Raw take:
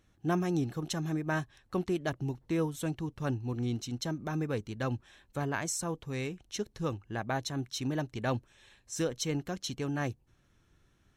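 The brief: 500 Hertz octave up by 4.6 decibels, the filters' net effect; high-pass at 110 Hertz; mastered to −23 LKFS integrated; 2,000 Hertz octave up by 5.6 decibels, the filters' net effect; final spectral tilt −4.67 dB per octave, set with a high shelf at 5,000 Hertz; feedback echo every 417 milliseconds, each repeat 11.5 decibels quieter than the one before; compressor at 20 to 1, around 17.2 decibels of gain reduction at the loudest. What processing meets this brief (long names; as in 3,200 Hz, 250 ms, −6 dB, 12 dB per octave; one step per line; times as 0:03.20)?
high-pass filter 110 Hz
parametric band 500 Hz +5.5 dB
parametric band 2,000 Hz +8 dB
high-shelf EQ 5,000 Hz −6 dB
downward compressor 20 to 1, threshold −40 dBFS
repeating echo 417 ms, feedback 27%, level −11.5 dB
level +22.5 dB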